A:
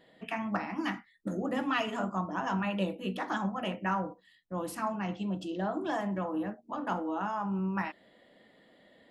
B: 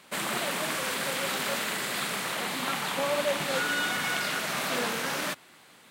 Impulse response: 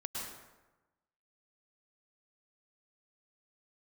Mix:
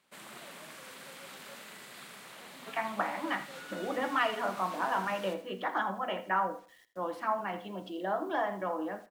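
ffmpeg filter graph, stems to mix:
-filter_complex "[0:a]acrossover=split=360 3600:gain=0.141 1 0.0708[link_01][link_02][link_03];[link_01][link_02][link_03]amix=inputs=3:normalize=0,bandreject=frequency=2600:width=8.9,acrusher=bits=10:mix=0:aa=0.000001,adelay=2450,volume=3dB,asplit=2[link_04][link_05];[link_05]volume=-15.5dB[link_06];[1:a]volume=-18dB,asplit=2[link_07][link_08];[link_08]volume=-10.5dB[link_09];[link_06][link_09]amix=inputs=2:normalize=0,aecho=0:1:81|162|243|324:1|0.29|0.0841|0.0244[link_10];[link_04][link_07][link_10]amix=inputs=3:normalize=0"

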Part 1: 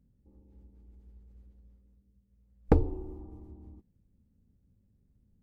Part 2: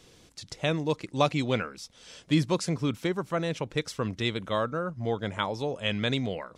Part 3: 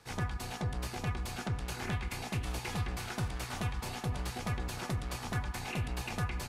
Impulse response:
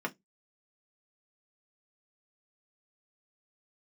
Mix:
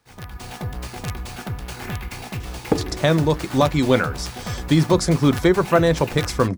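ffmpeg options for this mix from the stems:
-filter_complex "[0:a]highpass=170,volume=-4.5dB[link_01];[1:a]equalizer=frequency=2700:width_type=o:width=0.34:gain=-12.5,alimiter=limit=-19dB:level=0:latency=1:release=388,adelay=2400,volume=0dB,asplit=2[link_02][link_03];[link_03]volume=-13dB[link_04];[2:a]acrusher=samples=3:mix=1:aa=0.000001,aeval=exprs='(mod(16.8*val(0)+1,2)-1)/16.8':channel_layout=same,volume=-6dB[link_05];[3:a]atrim=start_sample=2205[link_06];[link_04][link_06]afir=irnorm=-1:irlink=0[link_07];[link_01][link_02][link_05][link_07]amix=inputs=4:normalize=0,dynaudnorm=framelen=130:gausssize=5:maxgain=12dB"

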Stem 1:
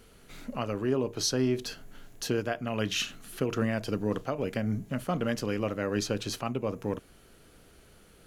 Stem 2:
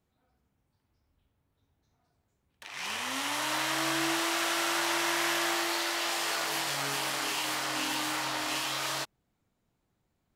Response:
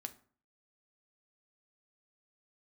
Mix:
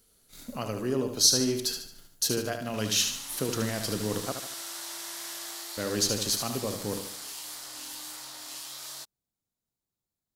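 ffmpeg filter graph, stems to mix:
-filter_complex "[0:a]agate=range=-13dB:threshold=-44dB:ratio=16:detection=peak,volume=-2dB,asplit=3[link_01][link_02][link_03];[link_01]atrim=end=4.32,asetpts=PTS-STARTPTS,afade=type=out:start_time=4.316:duration=0.004:curve=hsin[link_04];[link_02]atrim=start=4.32:end=5.77,asetpts=PTS-STARTPTS,volume=0[link_05];[link_03]atrim=start=5.77,asetpts=PTS-STARTPTS,afade=type=in:duration=0.004:curve=hsin[link_06];[link_04][link_05][link_06]concat=n=3:v=0:a=1,asplit=2[link_07][link_08];[link_08]volume=-7dB[link_09];[1:a]volume=-16dB[link_10];[link_09]aecho=0:1:74|148|222|296|370|444:1|0.43|0.185|0.0795|0.0342|0.0147[link_11];[link_07][link_10][link_11]amix=inputs=3:normalize=0,aexciter=amount=4:drive=4.9:freq=3700"

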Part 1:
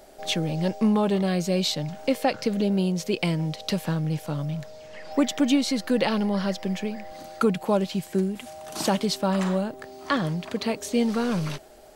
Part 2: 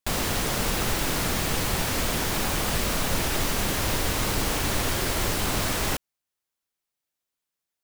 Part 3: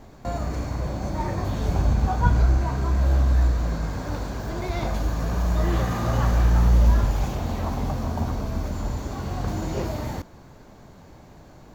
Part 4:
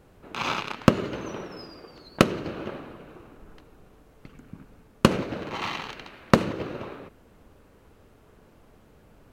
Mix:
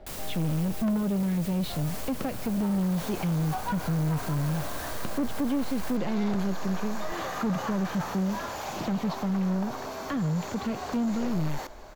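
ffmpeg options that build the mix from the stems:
ffmpeg -i stem1.wav -i stem2.wav -i stem3.wav -i stem4.wav -filter_complex "[0:a]lowpass=3900,aemphasis=mode=reproduction:type=bsi,volume=-3dB[link_01];[1:a]highshelf=frequency=8500:gain=9,volume=-13.5dB[link_02];[2:a]highpass=600,dynaudnorm=framelen=900:gausssize=3:maxgain=9.5dB,adelay=1450,volume=-6dB[link_03];[3:a]volume=-14.5dB[link_04];[link_01][link_02][link_03][link_04]amix=inputs=4:normalize=0,acrossover=split=290[link_05][link_06];[link_06]acompressor=threshold=-33dB:ratio=2[link_07];[link_05][link_07]amix=inputs=2:normalize=0,asoftclip=type=tanh:threshold=-23dB" out.wav

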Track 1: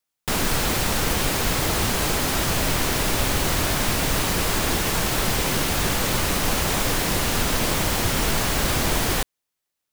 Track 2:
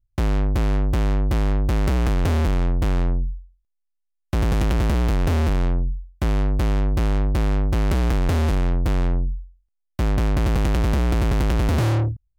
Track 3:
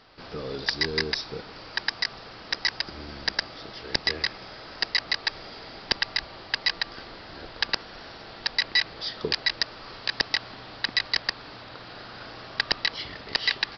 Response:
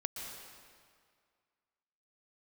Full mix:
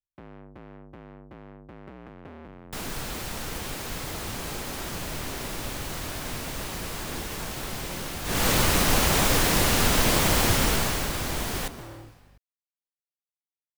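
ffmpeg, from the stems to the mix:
-filter_complex "[0:a]aeval=exprs='val(0)+0.00447*(sin(2*PI*50*n/s)+sin(2*PI*2*50*n/s)/2+sin(2*PI*3*50*n/s)/3+sin(2*PI*4*50*n/s)/4+sin(2*PI*5*50*n/s)/5)':channel_layout=same,adelay=2450,volume=-1.5dB,afade=type=in:start_time=8.24:duration=0.22:silence=0.237137,afade=type=out:start_time=10.49:duration=0.62:silence=0.354813,asplit=2[link_01][link_02];[link_02]volume=-9dB[link_03];[1:a]acrossover=split=150 2900:gain=0.141 1 0.0708[link_04][link_05][link_06];[link_04][link_05][link_06]amix=inputs=3:normalize=0,volume=-18dB[link_07];[3:a]atrim=start_sample=2205[link_08];[link_03][link_08]afir=irnorm=-1:irlink=0[link_09];[link_01][link_07][link_09]amix=inputs=3:normalize=0"

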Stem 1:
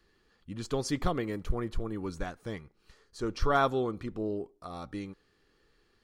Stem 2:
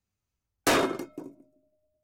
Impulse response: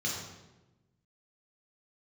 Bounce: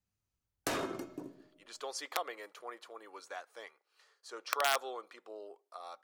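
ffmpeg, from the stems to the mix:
-filter_complex "[0:a]aeval=exprs='(mod(6.31*val(0)+1,2)-1)/6.31':channel_layout=same,highpass=frequency=550:width=0.5412,highpass=frequency=550:width=1.3066,adelay=1100,volume=-3.5dB[link_01];[1:a]acompressor=threshold=-30dB:ratio=5,volume=-3.5dB,asplit=2[link_02][link_03];[link_03]volume=-19dB[link_04];[2:a]atrim=start_sample=2205[link_05];[link_04][link_05]afir=irnorm=-1:irlink=0[link_06];[link_01][link_02][link_06]amix=inputs=3:normalize=0"

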